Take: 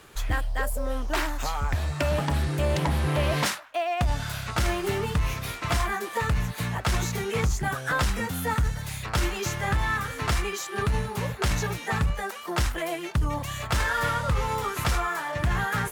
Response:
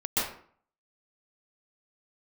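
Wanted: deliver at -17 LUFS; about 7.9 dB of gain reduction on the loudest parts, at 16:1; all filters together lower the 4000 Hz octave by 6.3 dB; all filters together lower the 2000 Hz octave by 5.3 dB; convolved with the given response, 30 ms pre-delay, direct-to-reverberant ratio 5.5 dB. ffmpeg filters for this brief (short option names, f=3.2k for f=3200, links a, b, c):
-filter_complex "[0:a]equalizer=f=2k:t=o:g=-5.5,equalizer=f=4k:t=o:g=-6.5,acompressor=threshold=-28dB:ratio=16,asplit=2[a][b];[1:a]atrim=start_sample=2205,adelay=30[c];[b][c]afir=irnorm=-1:irlink=0,volume=-16dB[d];[a][d]amix=inputs=2:normalize=0,volume=15.5dB"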